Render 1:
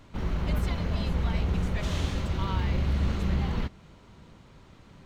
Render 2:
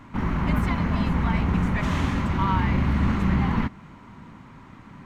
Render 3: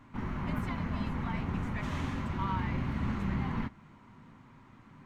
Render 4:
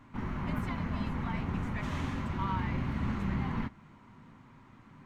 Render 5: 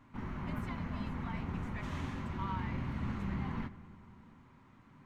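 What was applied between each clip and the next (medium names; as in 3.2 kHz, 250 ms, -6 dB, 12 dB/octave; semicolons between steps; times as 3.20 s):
graphic EQ 125/250/500/1000/2000/4000 Hz +5/+11/-4/+11/+8/-4 dB
flange 1.4 Hz, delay 7.6 ms, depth 1.1 ms, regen -57%; trim -6 dB
no audible change
filtered feedback delay 97 ms, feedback 80%, low-pass 3.7 kHz, level -19 dB; trim -5 dB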